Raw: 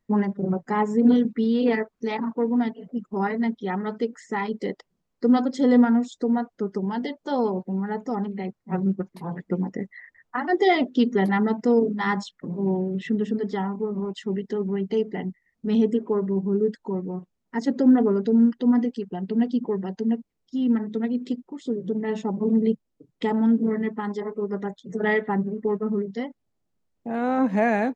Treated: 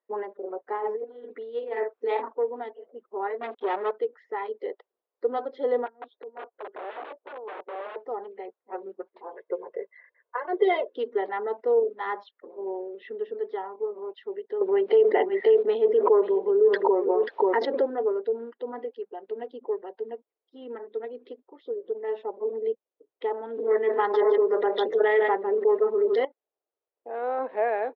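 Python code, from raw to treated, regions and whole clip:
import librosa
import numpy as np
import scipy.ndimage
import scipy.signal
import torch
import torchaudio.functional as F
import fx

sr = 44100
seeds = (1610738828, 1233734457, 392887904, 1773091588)

y = fx.chain(x, sr, fx.doubler(ms=49.0, db=-9),
    fx.over_compress(threshold_db=-26.0, ratio=-1.0), at=(0.72, 2.28))
y = fx.chain(y, sr, fx.peak_eq(hz=4300.0, db=-5.5, octaves=0.58),
    fx.leveller(passes=3), at=(3.41, 3.91))
y = fx.chain(y, sr, fx.over_compress(threshold_db=-27.0, ratio=-0.5),
    fx.overflow_wrap(gain_db=25.0),
    fx.air_absorb(metres=480.0), at=(5.86, 7.96))
y = fx.chain(y, sr, fx.air_absorb(metres=85.0),
    fx.comb(ms=1.9, depth=1.0), at=(9.36, 10.94))
y = fx.chain(y, sr, fx.low_shelf(hz=180.0, db=-6.0),
    fx.echo_single(ms=536, db=-19.5),
    fx.env_flatten(amount_pct=100), at=(14.61, 17.9))
y = fx.chain(y, sr, fx.high_shelf(hz=3400.0, db=9.5),
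    fx.echo_single(ms=152, db=-14.5),
    fx.env_flatten(amount_pct=100), at=(23.5, 26.25))
y = scipy.signal.sosfilt(scipy.signal.ellip(3, 1.0, 40, [430.0, 3700.0], 'bandpass', fs=sr, output='sos'), y)
y = fx.tilt_shelf(y, sr, db=7.0, hz=1300.0)
y = y * 10.0 ** (-5.5 / 20.0)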